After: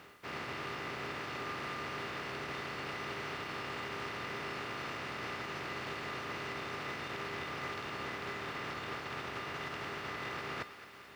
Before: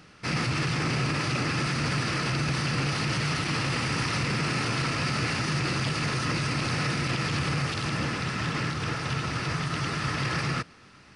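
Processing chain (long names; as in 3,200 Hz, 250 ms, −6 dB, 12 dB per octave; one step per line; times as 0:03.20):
compressing power law on the bin magnitudes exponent 0.36
low-pass filter 2,200 Hz 12 dB per octave
reversed playback
downward compressor 12 to 1, threshold −39 dBFS, peak gain reduction 13 dB
reversed playback
high-pass filter 77 Hz
parametric band 160 Hz −3.5 dB 1.2 octaves
tuned comb filter 400 Hz, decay 0.3 s, harmonics odd, mix 80%
log-companded quantiser 8 bits
on a send: feedback echo with a high-pass in the loop 218 ms, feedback 71%, high-pass 880 Hz, level −13 dB
on the sum: level +14.5 dB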